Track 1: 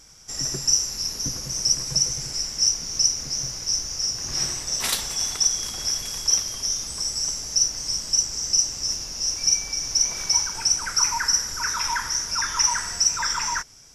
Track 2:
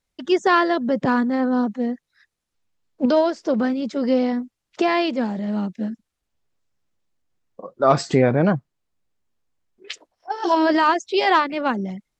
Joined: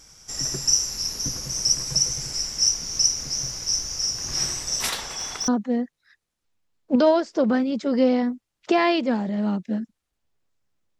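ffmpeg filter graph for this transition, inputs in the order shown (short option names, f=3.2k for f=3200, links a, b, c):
-filter_complex "[0:a]asettb=1/sr,asplit=3[a][b][c];[a]atrim=end=4.894[d];[b]atrim=start=4.89:end=5.48,asetpts=PTS-STARTPTS,afade=t=in:d=0.004:c=qsin,afade=t=out:st=0.586:d=0.004:c=qsin,asplit=2[e][f];[f]highpass=f=720:p=1,volume=11dB,asoftclip=type=tanh:threshold=-7.5dB[g];[e][g]amix=inputs=2:normalize=0,lowpass=f=1.4k:p=1,volume=-6dB[h];[c]atrim=start=5.476[i];[d][h]acrossfade=d=0.004:c1=hsin:c2=qsin[j];[j][i]acrossfade=d=0.004:c1=qsin:c2=hsin,apad=whole_dur=10.99,atrim=end=10.99,atrim=end=5.482[k];[1:a]atrim=start=1.578:end=7.09[l];[k][l]acrossfade=d=0.004:c1=hsin:c2=hsin"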